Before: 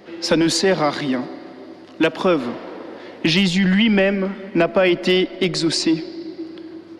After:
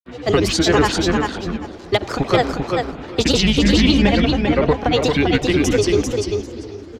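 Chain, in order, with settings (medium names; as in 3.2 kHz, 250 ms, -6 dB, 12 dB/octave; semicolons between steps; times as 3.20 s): octave divider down 2 oct, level -4 dB; vibrato 8.9 Hz 8.2 cents; granulator, pitch spread up and down by 7 st; on a send: feedback delay 394 ms, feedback 15%, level -4 dB; on the sum: trim +1 dB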